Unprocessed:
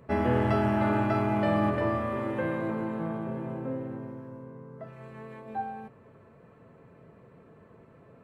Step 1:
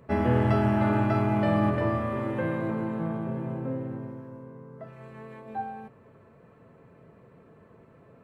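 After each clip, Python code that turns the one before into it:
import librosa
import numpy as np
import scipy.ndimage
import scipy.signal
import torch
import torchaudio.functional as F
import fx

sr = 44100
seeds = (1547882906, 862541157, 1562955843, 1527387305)

y = fx.dynamic_eq(x, sr, hz=130.0, q=1.0, threshold_db=-43.0, ratio=4.0, max_db=5)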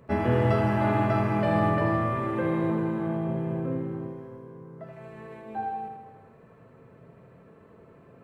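y = fx.echo_feedback(x, sr, ms=79, feedback_pct=60, wet_db=-5.5)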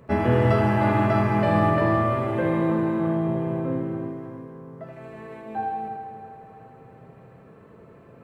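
y = fx.echo_feedback(x, sr, ms=325, feedback_pct=49, wet_db=-12.5)
y = F.gain(torch.from_numpy(y), 3.5).numpy()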